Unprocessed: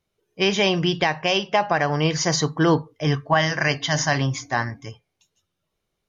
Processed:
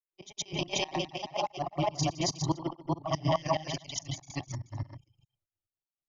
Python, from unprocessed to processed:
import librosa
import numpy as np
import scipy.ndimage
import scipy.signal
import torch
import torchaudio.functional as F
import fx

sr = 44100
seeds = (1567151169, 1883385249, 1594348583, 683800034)

y = fx.local_reverse(x, sr, ms=48.0)
y = fx.dereverb_blind(y, sr, rt60_s=0.63)
y = fx.transient(y, sr, attack_db=-4, sustain_db=6)
y = fx.granulator(y, sr, seeds[0], grain_ms=100.0, per_s=20.0, spray_ms=100.0, spread_st=0)
y = fx.fixed_phaser(y, sr, hz=310.0, stages=8)
y = fx.granulator(y, sr, seeds[1], grain_ms=100.0, per_s=30.0, spray_ms=290.0, spread_st=0)
y = fx.volume_shaper(y, sr, bpm=143, per_beat=2, depth_db=-20, release_ms=98.0, shape='slow start')
y = fx.band_widen(y, sr, depth_pct=40)